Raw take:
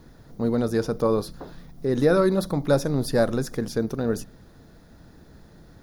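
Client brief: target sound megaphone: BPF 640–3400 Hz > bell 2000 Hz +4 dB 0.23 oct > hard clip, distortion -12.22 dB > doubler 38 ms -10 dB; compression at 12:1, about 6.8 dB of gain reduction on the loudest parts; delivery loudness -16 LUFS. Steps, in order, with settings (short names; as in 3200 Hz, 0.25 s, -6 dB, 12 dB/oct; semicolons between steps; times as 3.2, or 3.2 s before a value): compressor 12:1, threshold -21 dBFS; BPF 640–3400 Hz; bell 2000 Hz +4 dB 0.23 oct; hard clip -29 dBFS; doubler 38 ms -10 dB; gain +21 dB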